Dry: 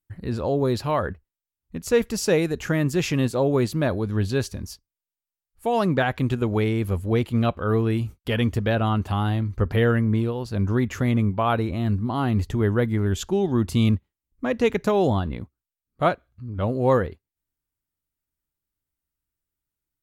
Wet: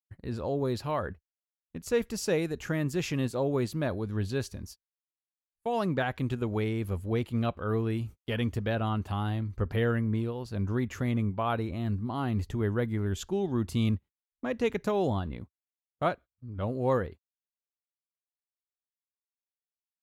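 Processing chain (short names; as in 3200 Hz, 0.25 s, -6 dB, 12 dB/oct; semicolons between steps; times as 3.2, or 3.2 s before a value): gate -36 dBFS, range -29 dB; gain -7.5 dB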